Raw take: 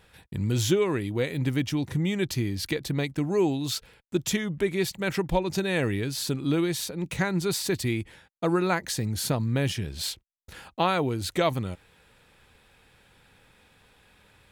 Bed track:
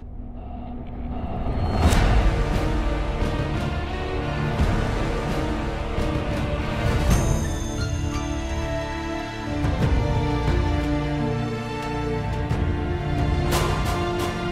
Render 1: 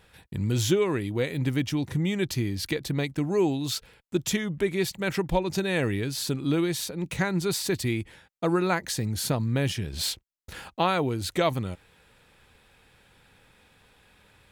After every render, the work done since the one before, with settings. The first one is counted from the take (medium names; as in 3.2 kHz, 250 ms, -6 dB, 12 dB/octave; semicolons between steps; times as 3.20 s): 9.93–10.71 s: waveshaping leveller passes 1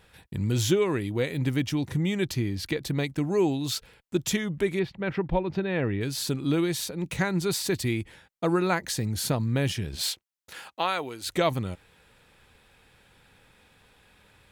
2.32–2.79 s: treble shelf 5 kHz -6 dB; 4.79–6.01 s: distance through air 370 m; 9.95–11.26 s: high-pass 480 Hz -> 1 kHz 6 dB/octave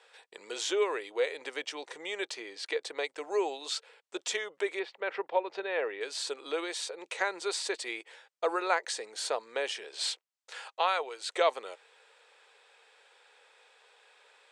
Chebyshev band-pass 440–8600 Hz, order 4; dynamic bell 6.1 kHz, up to -4 dB, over -47 dBFS, Q 0.78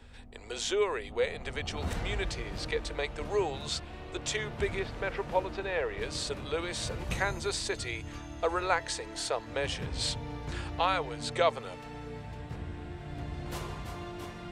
add bed track -16.5 dB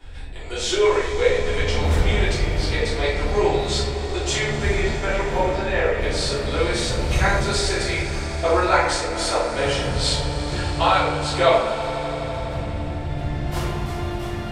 echo with a slow build-up 83 ms, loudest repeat 5, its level -18 dB; simulated room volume 160 m³, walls mixed, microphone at 3.2 m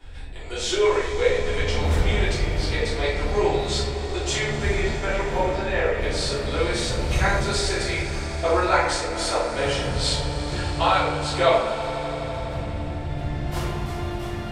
trim -2 dB